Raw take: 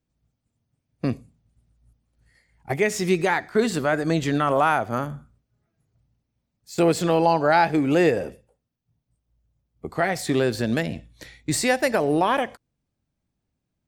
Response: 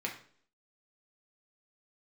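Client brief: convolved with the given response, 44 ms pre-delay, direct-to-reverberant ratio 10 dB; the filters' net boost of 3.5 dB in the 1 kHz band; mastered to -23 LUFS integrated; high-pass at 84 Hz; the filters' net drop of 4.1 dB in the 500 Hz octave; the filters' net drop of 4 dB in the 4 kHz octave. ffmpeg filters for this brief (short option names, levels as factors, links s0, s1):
-filter_complex "[0:a]highpass=84,equalizer=f=500:t=o:g=-7.5,equalizer=f=1000:t=o:g=7.5,equalizer=f=4000:t=o:g=-5.5,asplit=2[s0][s1];[1:a]atrim=start_sample=2205,adelay=44[s2];[s1][s2]afir=irnorm=-1:irlink=0,volume=0.211[s3];[s0][s3]amix=inputs=2:normalize=0,volume=0.944"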